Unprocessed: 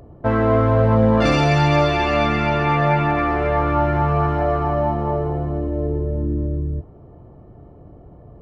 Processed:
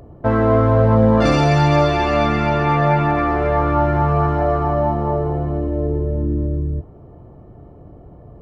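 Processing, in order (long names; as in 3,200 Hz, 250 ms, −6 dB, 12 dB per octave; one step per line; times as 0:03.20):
dynamic equaliser 2,600 Hz, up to −5 dB, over −40 dBFS, Q 1.3
level +2 dB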